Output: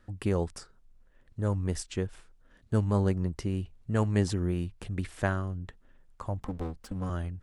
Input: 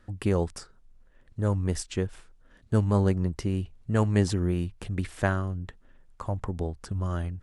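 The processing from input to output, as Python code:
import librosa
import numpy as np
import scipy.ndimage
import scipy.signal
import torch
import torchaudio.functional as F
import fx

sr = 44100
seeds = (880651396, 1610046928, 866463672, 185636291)

y = fx.lower_of_two(x, sr, delay_ms=3.8, at=(6.4, 7.1))
y = F.gain(torch.from_numpy(y), -3.0).numpy()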